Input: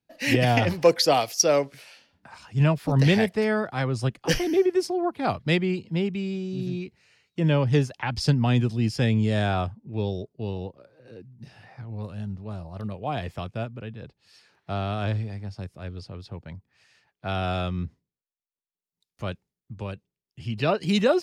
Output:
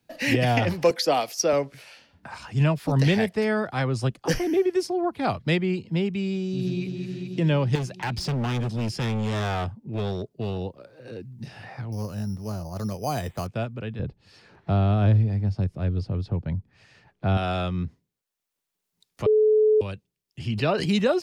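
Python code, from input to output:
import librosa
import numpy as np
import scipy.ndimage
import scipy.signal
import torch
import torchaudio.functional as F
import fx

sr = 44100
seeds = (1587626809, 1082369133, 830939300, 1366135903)

y = fx.highpass(x, sr, hz=170.0, slope=24, at=(0.9, 1.53))
y = fx.peak_eq(y, sr, hz=fx.line((4.07, 1700.0), (4.65, 5700.0)), db=-7.0, octaves=0.77, at=(4.07, 4.65), fade=0.02)
y = fx.echo_throw(y, sr, start_s=6.42, length_s=0.41, ms=220, feedback_pct=75, wet_db=-7.0)
y = fx.overload_stage(y, sr, gain_db=25.5, at=(7.75, 10.63))
y = fx.resample_bad(y, sr, factor=8, down='filtered', up='hold', at=(11.92, 13.47))
y = fx.tilt_eq(y, sr, slope=-3.5, at=(13.99, 17.37))
y = fx.sustainer(y, sr, db_per_s=56.0, at=(20.5, 20.92))
y = fx.edit(y, sr, fx.bleep(start_s=19.26, length_s=0.55, hz=430.0, db=-13.5), tone=tone)
y = fx.band_squash(y, sr, depth_pct=40)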